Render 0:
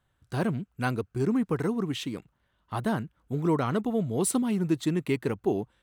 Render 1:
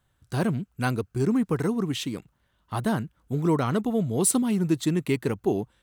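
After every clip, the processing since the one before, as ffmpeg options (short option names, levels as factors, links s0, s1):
-af "bass=f=250:g=2,treble=f=4000:g=5,volume=1.19"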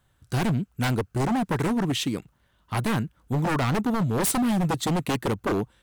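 -af "aeval=exprs='0.075*(abs(mod(val(0)/0.075+3,4)-2)-1)':c=same,volume=1.58"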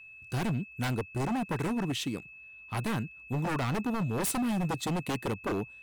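-af "aeval=exprs='val(0)+0.00891*sin(2*PI*2600*n/s)':c=same,volume=0.473"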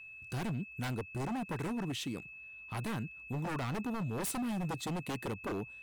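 -af "alimiter=level_in=2.11:limit=0.0631:level=0:latency=1:release=69,volume=0.473"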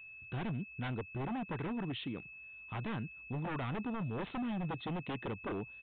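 -af "aresample=8000,aresample=44100,volume=0.841"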